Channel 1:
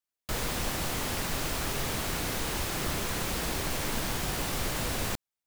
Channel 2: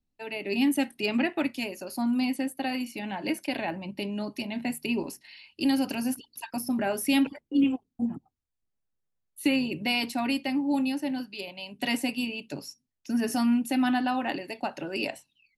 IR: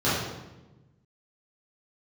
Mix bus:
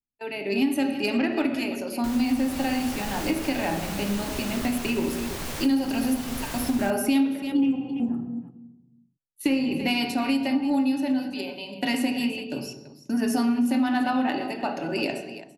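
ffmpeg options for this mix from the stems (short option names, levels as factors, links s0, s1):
-filter_complex "[0:a]adelay=1750,volume=0.891,asplit=2[s0][s1];[s1]volume=0.075[s2];[1:a]agate=range=0.126:threshold=0.00708:ratio=16:detection=peak,aeval=exprs='0.237*(cos(1*acos(clip(val(0)/0.237,-1,1)))-cos(1*PI/2))+0.0266*(cos(3*acos(clip(val(0)/0.237,-1,1)))-cos(3*PI/2))':c=same,acontrast=55,volume=0.841,asplit=4[s3][s4][s5][s6];[s4]volume=0.112[s7];[s5]volume=0.211[s8];[s6]apad=whole_len=318063[s9];[s0][s9]sidechaincompress=threshold=0.0501:ratio=8:attack=38:release=1240[s10];[2:a]atrim=start_sample=2205[s11];[s7][s11]afir=irnorm=-1:irlink=0[s12];[s2][s8]amix=inputs=2:normalize=0,aecho=0:1:335:1[s13];[s10][s3][s12][s13]amix=inputs=4:normalize=0,acompressor=threshold=0.1:ratio=4"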